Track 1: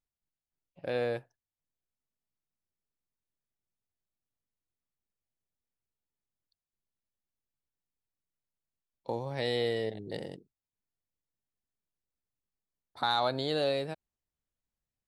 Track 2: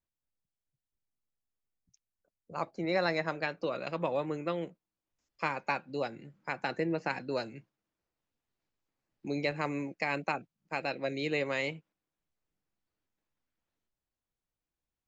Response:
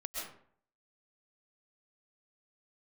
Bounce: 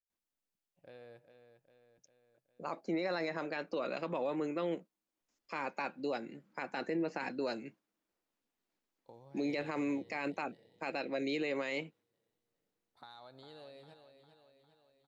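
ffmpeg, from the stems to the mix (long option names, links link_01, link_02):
-filter_complex "[0:a]acompressor=threshold=-30dB:ratio=6,volume=-20dB,asplit=3[link_01][link_02][link_03];[link_02]volume=-19.5dB[link_04];[link_03]volume=-8.5dB[link_05];[1:a]lowshelf=frequency=170:width_type=q:width=1.5:gain=-9,adelay=100,volume=0.5dB[link_06];[2:a]atrim=start_sample=2205[link_07];[link_04][link_07]afir=irnorm=-1:irlink=0[link_08];[link_05]aecho=0:1:403|806|1209|1612|2015|2418|2821|3224|3627:1|0.57|0.325|0.185|0.106|0.0602|0.0343|0.0195|0.0111[link_09];[link_01][link_06][link_08][link_09]amix=inputs=4:normalize=0,alimiter=level_in=3dB:limit=-24dB:level=0:latency=1:release=25,volume=-3dB"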